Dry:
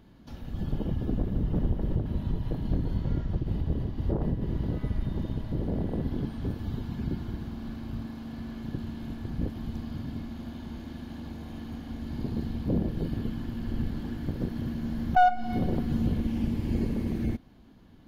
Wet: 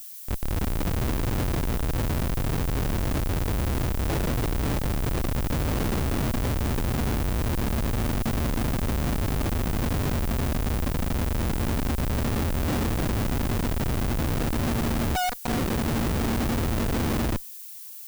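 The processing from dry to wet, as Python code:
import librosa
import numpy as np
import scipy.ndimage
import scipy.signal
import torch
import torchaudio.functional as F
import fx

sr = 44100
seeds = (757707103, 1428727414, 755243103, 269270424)

y = fx.dynamic_eq(x, sr, hz=180.0, q=4.1, threshold_db=-48.0, ratio=4.0, max_db=-8)
y = fx.schmitt(y, sr, flips_db=-36.5)
y = fx.dmg_noise_colour(y, sr, seeds[0], colour='violet', level_db=-47.0)
y = y * librosa.db_to_amplitude(6.0)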